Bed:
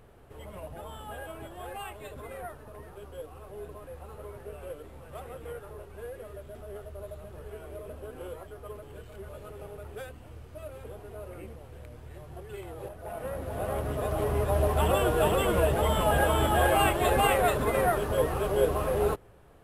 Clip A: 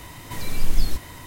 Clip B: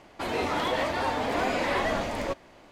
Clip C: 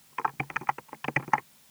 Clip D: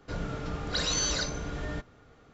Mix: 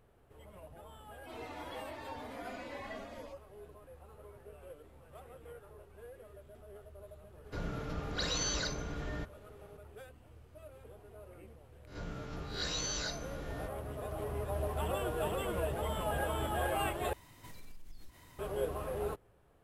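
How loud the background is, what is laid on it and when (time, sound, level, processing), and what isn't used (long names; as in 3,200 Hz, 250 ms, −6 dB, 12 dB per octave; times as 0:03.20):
bed −10.5 dB
0:01.04: mix in B −15 dB + harmonic-percussive split with one part muted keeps harmonic
0:07.44: mix in D −4.5 dB + high-shelf EQ 5,400 Hz −4 dB
0:11.87: mix in D −9.5 dB + peak hold with a rise ahead of every peak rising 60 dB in 0.37 s
0:17.13: overwrite with A −17.5 dB + downward compressor, threshold −27 dBFS
not used: C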